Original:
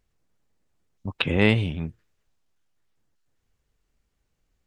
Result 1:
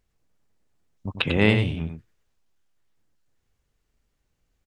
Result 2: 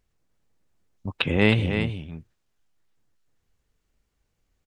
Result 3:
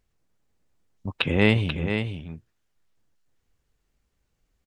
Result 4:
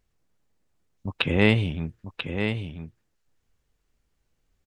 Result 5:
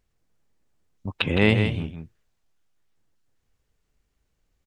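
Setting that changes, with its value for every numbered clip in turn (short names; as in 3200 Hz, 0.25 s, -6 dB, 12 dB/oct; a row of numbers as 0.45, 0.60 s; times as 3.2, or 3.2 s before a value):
echo, time: 96, 316, 487, 989, 163 ms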